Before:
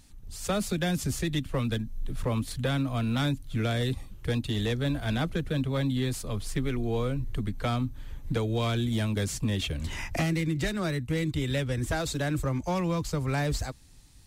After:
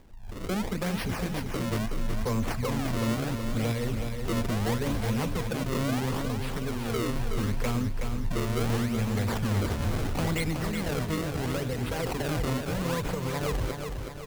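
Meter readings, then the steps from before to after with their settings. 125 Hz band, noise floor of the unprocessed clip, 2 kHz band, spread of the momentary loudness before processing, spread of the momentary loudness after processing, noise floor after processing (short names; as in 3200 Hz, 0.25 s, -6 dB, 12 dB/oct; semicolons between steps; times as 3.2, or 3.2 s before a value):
-1.0 dB, -48 dBFS, -0.5 dB, 6 LU, 4 LU, -36 dBFS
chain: ripple EQ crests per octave 0.9, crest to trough 11 dB; in parallel at -2.5 dB: negative-ratio compressor -31 dBFS; on the sum: random-step tremolo; decimation with a swept rate 31×, swing 160% 0.74 Hz; hard clip -23 dBFS, distortion -14 dB; on a send: feedback echo 0.372 s, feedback 51%, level -6 dB; on the sum: gain -1.5 dB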